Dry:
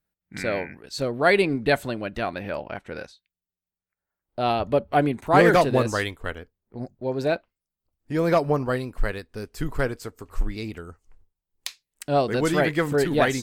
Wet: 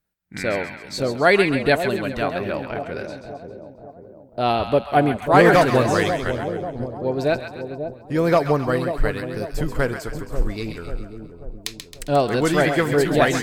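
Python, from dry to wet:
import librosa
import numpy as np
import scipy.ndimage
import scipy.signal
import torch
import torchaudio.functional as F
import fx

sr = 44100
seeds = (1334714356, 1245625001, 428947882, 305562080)

y = fx.echo_split(x, sr, split_hz=830.0, low_ms=540, high_ms=134, feedback_pct=52, wet_db=-8.0)
y = y * librosa.db_to_amplitude(3.0)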